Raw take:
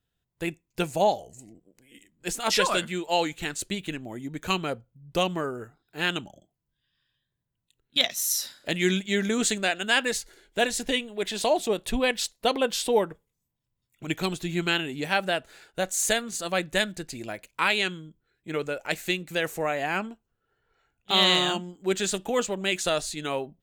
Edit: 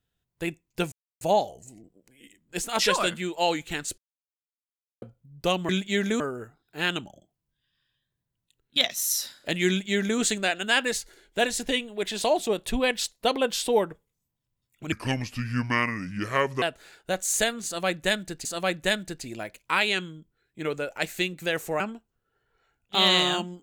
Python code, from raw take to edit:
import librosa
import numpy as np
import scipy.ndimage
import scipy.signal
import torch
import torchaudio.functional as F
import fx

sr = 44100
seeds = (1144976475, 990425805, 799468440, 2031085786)

y = fx.edit(x, sr, fx.insert_silence(at_s=0.92, length_s=0.29),
    fx.silence(start_s=3.69, length_s=1.04),
    fx.duplicate(start_s=8.88, length_s=0.51, to_s=5.4),
    fx.speed_span(start_s=14.12, length_s=1.19, speed=0.7),
    fx.repeat(start_s=16.34, length_s=0.8, count=2),
    fx.cut(start_s=19.69, length_s=0.27), tone=tone)